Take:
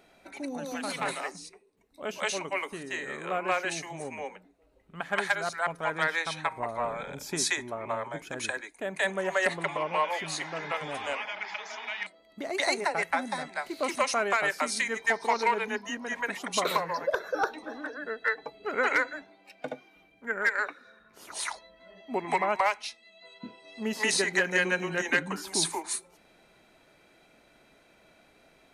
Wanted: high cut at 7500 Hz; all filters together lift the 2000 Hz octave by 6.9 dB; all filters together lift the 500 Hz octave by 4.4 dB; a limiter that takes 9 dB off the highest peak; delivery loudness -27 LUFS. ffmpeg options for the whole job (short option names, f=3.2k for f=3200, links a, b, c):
-af "lowpass=7.5k,equalizer=f=500:t=o:g=5,equalizer=f=2k:t=o:g=8,volume=1.5dB,alimiter=limit=-15dB:level=0:latency=1"